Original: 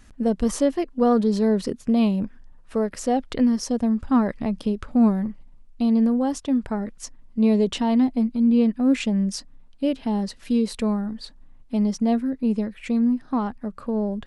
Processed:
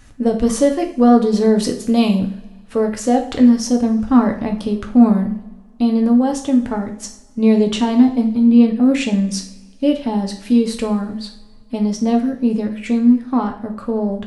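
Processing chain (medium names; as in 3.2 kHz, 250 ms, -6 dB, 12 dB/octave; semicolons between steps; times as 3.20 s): 1.56–2.15 s: treble shelf 3.1 kHz +9 dB; two-slope reverb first 0.47 s, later 1.9 s, from -21 dB, DRR 3 dB; trim +4.5 dB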